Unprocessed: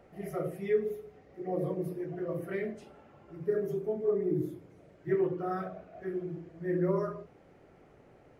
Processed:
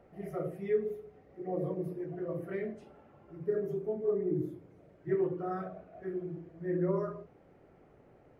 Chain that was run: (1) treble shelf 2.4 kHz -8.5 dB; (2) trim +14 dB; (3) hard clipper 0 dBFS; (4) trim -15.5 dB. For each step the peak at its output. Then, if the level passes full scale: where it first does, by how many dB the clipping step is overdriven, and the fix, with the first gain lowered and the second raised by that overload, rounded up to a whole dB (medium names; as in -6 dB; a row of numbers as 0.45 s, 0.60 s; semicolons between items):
-17.5 dBFS, -3.5 dBFS, -3.5 dBFS, -19.0 dBFS; nothing clips